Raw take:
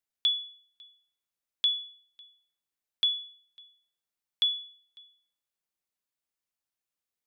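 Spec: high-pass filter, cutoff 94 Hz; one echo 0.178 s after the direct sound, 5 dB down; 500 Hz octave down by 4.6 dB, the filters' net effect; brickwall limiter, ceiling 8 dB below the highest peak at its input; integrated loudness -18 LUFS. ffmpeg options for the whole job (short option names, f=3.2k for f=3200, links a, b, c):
-af "highpass=94,equalizer=f=500:t=o:g=-6,alimiter=level_in=1dB:limit=-24dB:level=0:latency=1,volume=-1dB,aecho=1:1:178:0.562,volume=14.5dB"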